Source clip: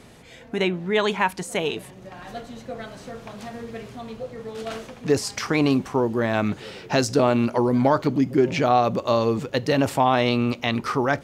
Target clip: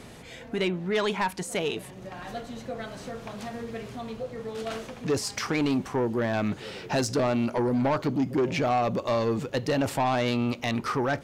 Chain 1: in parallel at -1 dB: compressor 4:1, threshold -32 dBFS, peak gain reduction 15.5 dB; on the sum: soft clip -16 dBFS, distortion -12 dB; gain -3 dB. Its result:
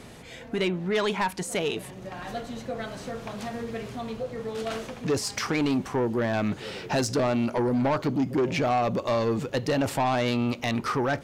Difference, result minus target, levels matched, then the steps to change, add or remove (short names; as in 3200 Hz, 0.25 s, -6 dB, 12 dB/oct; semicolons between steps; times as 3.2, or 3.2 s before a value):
compressor: peak gain reduction -8 dB
change: compressor 4:1, threshold -42.5 dBFS, peak gain reduction 23 dB